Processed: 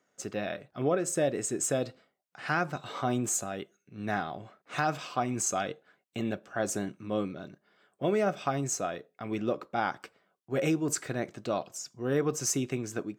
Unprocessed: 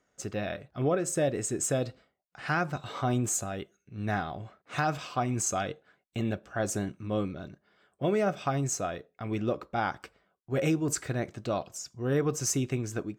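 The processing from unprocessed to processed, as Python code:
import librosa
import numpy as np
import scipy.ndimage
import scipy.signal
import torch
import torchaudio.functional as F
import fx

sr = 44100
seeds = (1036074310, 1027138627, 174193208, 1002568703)

y = scipy.signal.sosfilt(scipy.signal.butter(2, 160.0, 'highpass', fs=sr, output='sos'), x)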